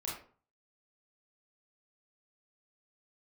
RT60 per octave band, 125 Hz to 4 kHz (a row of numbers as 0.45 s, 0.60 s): 0.55 s, 0.45 s, 0.45 s, 0.45 s, 0.35 s, 0.25 s